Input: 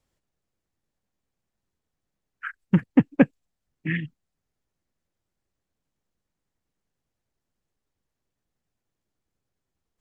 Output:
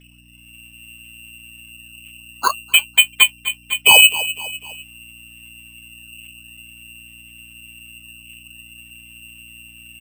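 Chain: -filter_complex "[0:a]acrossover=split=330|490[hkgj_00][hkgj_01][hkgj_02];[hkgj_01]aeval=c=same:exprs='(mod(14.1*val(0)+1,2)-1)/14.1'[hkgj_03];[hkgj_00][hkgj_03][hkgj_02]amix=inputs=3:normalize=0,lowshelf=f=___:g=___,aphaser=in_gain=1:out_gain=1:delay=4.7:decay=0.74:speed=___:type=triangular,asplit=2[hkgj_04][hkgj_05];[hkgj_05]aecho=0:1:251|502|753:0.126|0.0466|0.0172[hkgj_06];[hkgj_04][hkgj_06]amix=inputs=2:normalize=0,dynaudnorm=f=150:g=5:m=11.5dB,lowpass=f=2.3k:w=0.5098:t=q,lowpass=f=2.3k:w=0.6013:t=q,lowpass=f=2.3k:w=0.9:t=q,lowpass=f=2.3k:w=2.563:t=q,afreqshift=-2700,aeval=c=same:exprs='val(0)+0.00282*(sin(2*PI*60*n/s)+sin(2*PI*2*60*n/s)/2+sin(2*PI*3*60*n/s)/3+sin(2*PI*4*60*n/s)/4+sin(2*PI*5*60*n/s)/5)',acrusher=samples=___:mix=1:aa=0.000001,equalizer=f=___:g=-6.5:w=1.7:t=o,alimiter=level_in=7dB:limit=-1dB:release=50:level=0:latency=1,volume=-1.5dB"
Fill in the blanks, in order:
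380, 11.5, 0.48, 8, 63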